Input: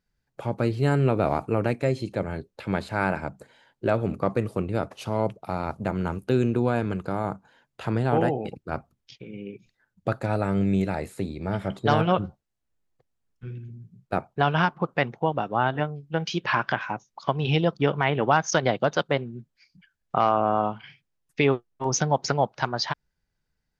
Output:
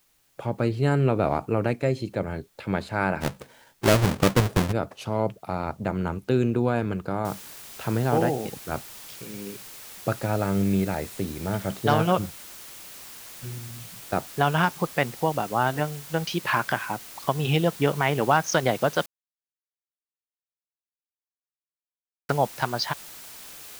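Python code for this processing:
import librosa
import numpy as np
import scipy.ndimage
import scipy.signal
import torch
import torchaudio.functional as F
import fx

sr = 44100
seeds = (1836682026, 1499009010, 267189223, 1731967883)

y = fx.halfwave_hold(x, sr, at=(3.2, 4.71), fade=0.02)
y = fx.noise_floor_step(y, sr, seeds[0], at_s=7.25, before_db=-66, after_db=-43, tilt_db=0.0)
y = fx.edit(y, sr, fx.silence(start_s=19.06, length_s=3.23), tone=tone)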